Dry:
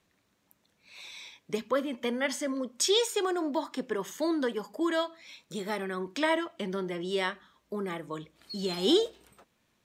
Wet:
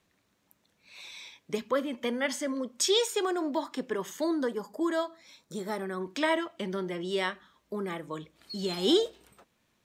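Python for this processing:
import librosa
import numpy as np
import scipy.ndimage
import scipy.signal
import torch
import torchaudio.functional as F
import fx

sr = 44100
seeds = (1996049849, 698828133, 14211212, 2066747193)

y = fx.peak_eq(x, sr, hz=2700.0, db=-10.0, octaves=0.86, at=(4.24, 6.01))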